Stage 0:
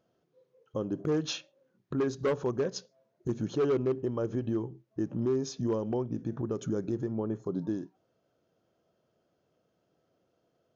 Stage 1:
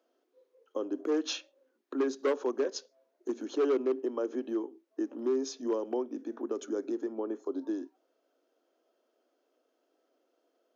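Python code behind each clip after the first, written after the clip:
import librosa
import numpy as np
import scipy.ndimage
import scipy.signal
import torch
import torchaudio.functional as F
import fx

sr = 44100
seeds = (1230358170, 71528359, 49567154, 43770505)

y = scipy.signal.sosfilt(scipy.signal.butter(12, 250.0, 'highpass', fs=sr, output='sos'), x)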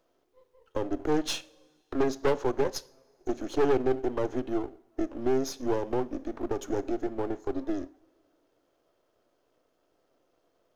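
y = np.where(x < 0.0, 10.0 ** (-12.0 / 20.0) * x, x)
y = fx.rev_double_slope(y, sr, seeds[0], early_s=0.46, late_s=2.3, knee_db=-18, drr_db=17.0)
y = y * 10.0 ** (6.5 / 20.0)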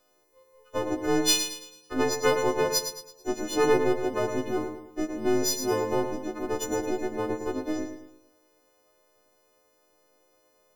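y = fx.freq_snap(x, sr, grid_st=3)
y = fx.echo_feedback(y, sr, ms=109, feedback_pct=40, wet_db=-8)
y = y * 10.0 ** (1.5 / 20.0)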